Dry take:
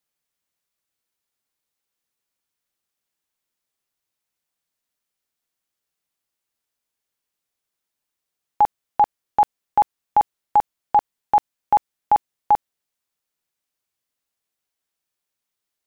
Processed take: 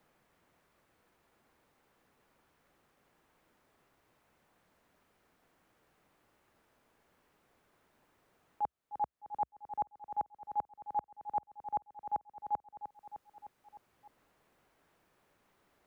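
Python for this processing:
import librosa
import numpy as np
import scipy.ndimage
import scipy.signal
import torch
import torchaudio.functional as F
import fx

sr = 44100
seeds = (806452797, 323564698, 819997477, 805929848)

y = fx.high_shelf(x, sr, hz=2000.0, db=-12.0)
y = fx.auto_swell(y, sr, attack_ms=669.0)
y = fx.peak_eq(y, sr, hz=65.0, db=2.0, octaves=0.46)
y = fx.echo_feedback(y, sr, ms=305, feedback_pct=51, wet_db=-13.5)
y = fx.band_squash(y, sr, depth_pct=40)
y = F.gain(torch.from_numpy(y), 10.5).numpy()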